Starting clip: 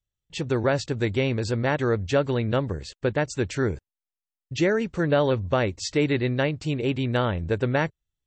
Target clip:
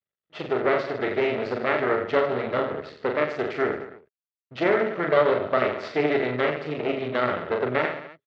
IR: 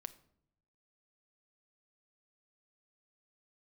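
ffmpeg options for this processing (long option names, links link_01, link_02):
-af "aecho=1:1:40|88|145.6|214.7|297.7:0.631|0.398|0.251|0.158|0.1,aeval=exprs='max(val(0),0)':channel_layout=same,highpass=170,equalizer=frequency=410:width_type=q:width=4:gain=9,equalizer=frequency=630:width_type=q:width=4:gain=9,equalizer=frequency=1300:width_type=q:width=4:gain=10,equalizer=frequency=2000:width_type=q:width=4:gain=8,lowpass=frequency=4000:width=0.5412,lowpass=frequency=4000:width=1.3066,volume=-2dB"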